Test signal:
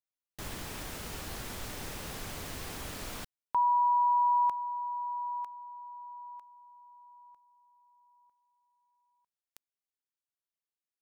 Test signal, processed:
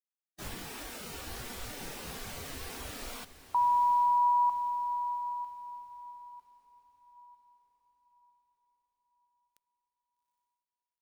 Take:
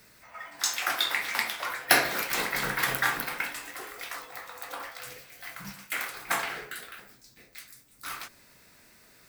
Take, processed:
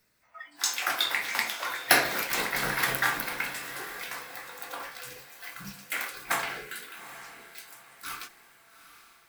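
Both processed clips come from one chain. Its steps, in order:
noise reduction from a noise print of the clip's start 14 dB
feedback delay with all-pass diffusion 813 ms, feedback 41%, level −13.5 dB

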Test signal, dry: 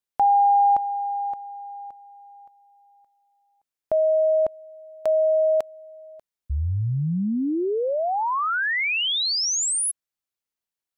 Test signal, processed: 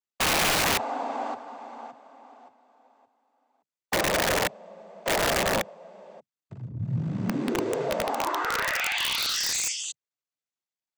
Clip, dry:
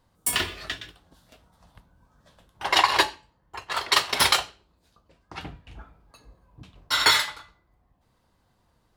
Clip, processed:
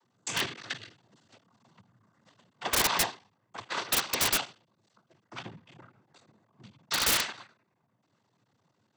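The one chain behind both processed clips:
sub-harmonics by changed cycles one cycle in 3, muted
cochlear-implant simulation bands 16
wrap-around overflow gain 17 dB
level −1.5 dB

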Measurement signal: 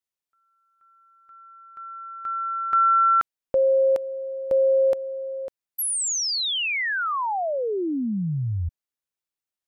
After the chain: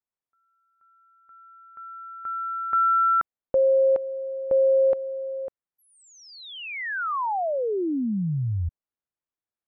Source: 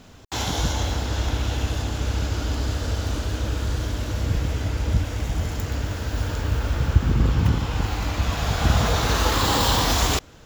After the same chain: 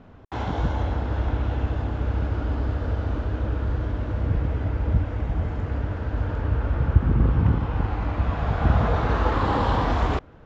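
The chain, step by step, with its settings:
low-pass filter 1,500 Hz 12 dB per octave

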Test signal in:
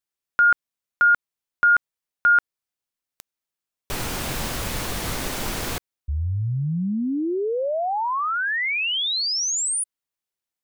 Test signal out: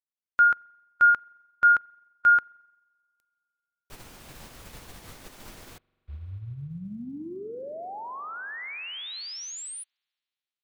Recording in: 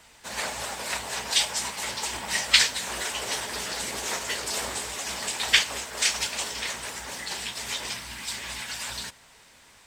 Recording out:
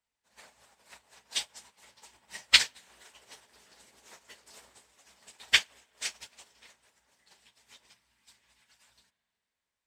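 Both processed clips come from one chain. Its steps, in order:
spring reverb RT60 2.9 s, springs 43 ms, chirp 35 ms, DRR 11.5 dB
surface crackle 220 per second −53 dBFS
expander for the loud parts 2.5 to 1, over −37 dBFS

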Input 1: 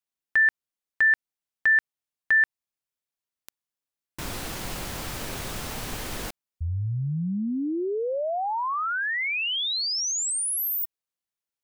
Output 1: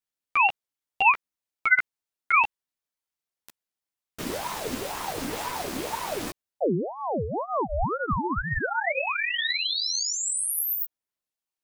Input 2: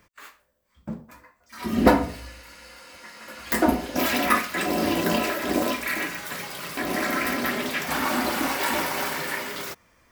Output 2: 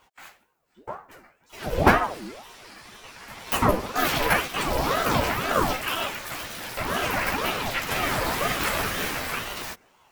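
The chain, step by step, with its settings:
multi-voice chorus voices 6, 0.77 Hz, delay 13 ms, depth 2.2 ms
ring modulator whose carrier an LFO sweeps 630 Hz, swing 60%, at 2 Hz
level +5.5 dB

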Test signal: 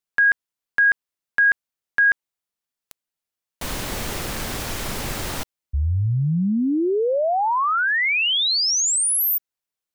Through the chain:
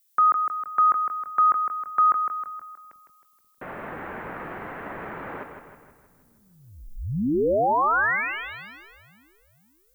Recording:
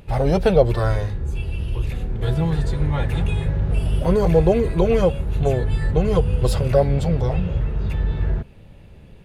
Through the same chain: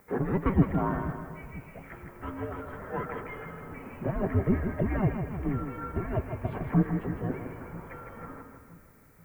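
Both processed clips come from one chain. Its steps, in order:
echo with a time of its own for lows and highs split 460 Hz, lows 487 ms, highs 158 ms, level −7 dB
single-sideband voice off tune −390 Hz 600–2,300 Hz
background noise violet −64 dBFS
level −1.5 dB

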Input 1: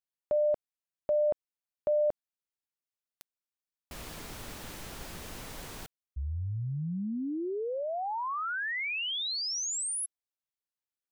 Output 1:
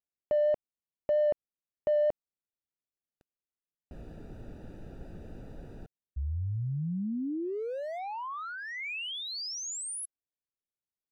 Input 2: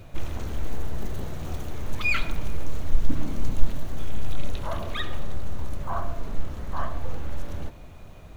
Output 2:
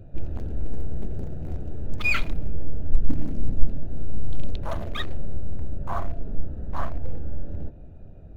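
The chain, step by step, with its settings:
adaptive Wiener filter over 41 samples
pitch vibrato 4.4 Hz 11 cents
level +1.5 dB

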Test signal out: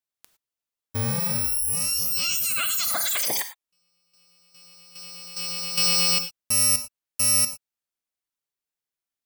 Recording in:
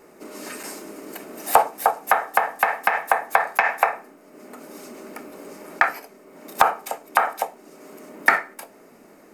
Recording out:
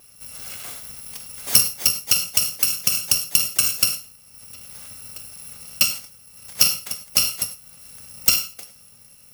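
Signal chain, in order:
samples in bit-reversed order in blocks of 128 samples
reverb whose tail is shaped and stops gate 130 ms flat, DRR 9 dB

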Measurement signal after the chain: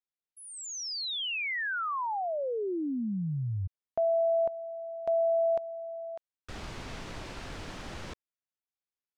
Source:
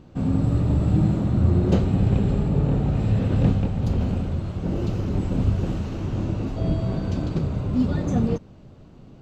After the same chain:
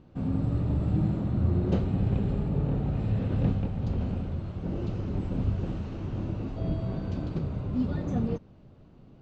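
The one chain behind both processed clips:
high-frequency loss of the air 100 metres
level −6.5 dB

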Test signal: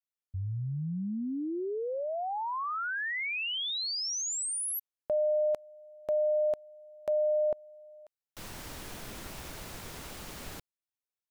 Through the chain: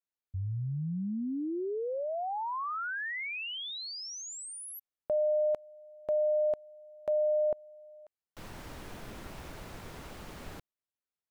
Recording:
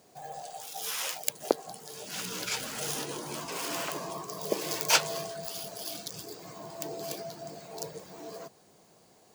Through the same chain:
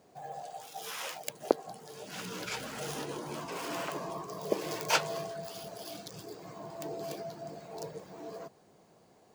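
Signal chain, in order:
high-shelf EQ 3,200 Hz −10.5 dB

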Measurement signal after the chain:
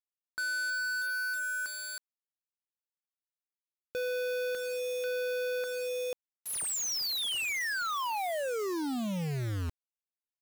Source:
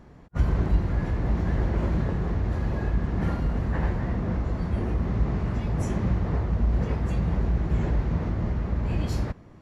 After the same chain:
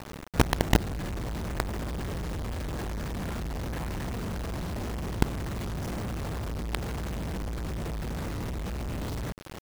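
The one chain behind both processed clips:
low-pass filter 5,300 Hz 12 dB per octave
in parallel at +1 dB: downward compressor 6 to 1, threshold −37 dBFS
on the sum: log-companded quantiser 2 bits
level −7.5 dB

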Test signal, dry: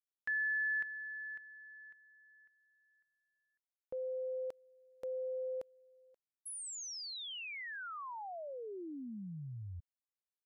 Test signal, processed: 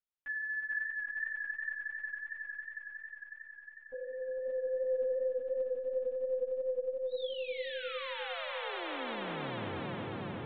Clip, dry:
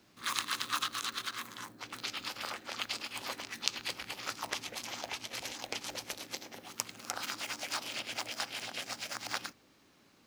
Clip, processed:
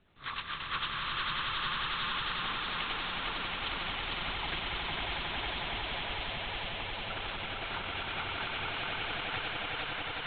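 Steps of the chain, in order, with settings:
linear-prediction vocoder at 8 kHz pitch kept
echo that builds up and dies away 91 ms, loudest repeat 8, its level −5.5 dB
feedback echo with a swinging delay time 451 ms, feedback 48%, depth 54 cents, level −4.5 dB
level −2.5 dB

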